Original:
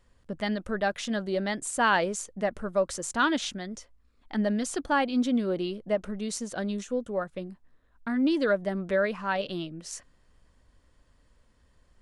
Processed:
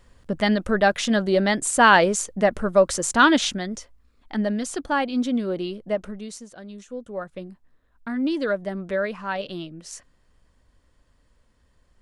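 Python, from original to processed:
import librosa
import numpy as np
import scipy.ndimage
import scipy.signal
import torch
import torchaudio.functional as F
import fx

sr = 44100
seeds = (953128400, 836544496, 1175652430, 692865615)

y = fx.gain(x, sr, db=fx.line((3.41, 9.0), (4.55, 2.0), (6.02, 2.0), (6.59, -10.0), (7.31, 0.5)))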